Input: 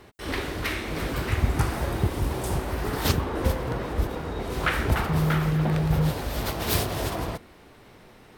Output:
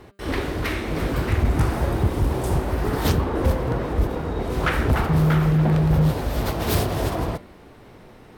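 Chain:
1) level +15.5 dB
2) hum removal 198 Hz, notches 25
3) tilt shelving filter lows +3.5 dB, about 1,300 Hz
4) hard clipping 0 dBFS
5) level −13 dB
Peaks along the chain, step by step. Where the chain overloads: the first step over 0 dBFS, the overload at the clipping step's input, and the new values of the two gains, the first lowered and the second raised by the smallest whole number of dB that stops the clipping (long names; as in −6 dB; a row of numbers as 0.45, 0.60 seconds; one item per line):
+8.5, +8.0, +9.5, 0.0, −13.0 dBFS
step 1, 9.5 dB
step 1 +5.5 dB, step 5 −3 dB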